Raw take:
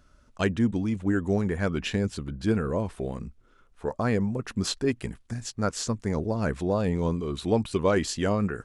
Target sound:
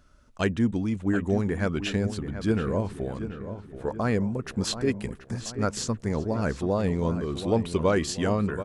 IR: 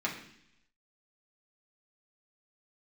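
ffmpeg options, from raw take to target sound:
-filter_complex "[0:a]asplit=2[s0][s1];[s1]adelay=731,lowpass=f=2500:p=1,volume=0.299,asplit=2[s2][s3];[s3]adelay=731,lowpass=f=2500:p=1,volume=0.5,asplit=2[s4][s5];[s5]adelay=731,lowpass=f=2500:p=1,volume=0.5,asplit=2[s6][s7];[s7]adelay=731,lowpass=f=2500:p=1,volume=0.5,asplit=2[s8][s9];[s9]adelay=731,lowpass=f=2500:p=1,volume=0.5[s10];[s0][s2][s4][s6][s8][s10]amix=inputs=6:normalize=0"

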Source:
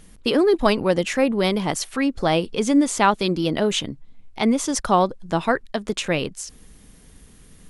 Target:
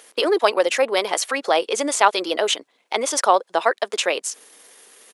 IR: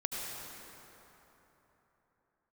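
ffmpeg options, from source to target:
-filter_complex "[0:a]highpass=f=440:w=0.5412,highpass=f=440:w=1.3066,asplit=2[s0][s1];[s1]acompressor=threshold=0.0224:ratio=6,volume=0.794[s2];[s0][s2]amix=inputs=2:normalize=0,atempo=1.5,volume=1.33"

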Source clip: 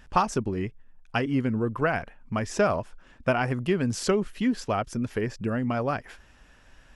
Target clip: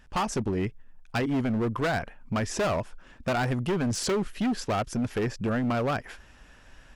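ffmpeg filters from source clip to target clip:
-af "dynaudnorm=f=110:g=3:m=2.11,volume=8.91,asoftclip=hard,volume=0.112,volume=0.631"

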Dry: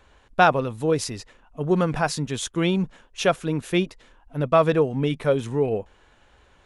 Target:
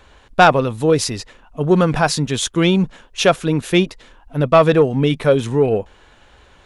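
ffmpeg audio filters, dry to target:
-af "equalizer=f=3900:w=1.5:g=2.5,acontrast=68,volume=1.12"

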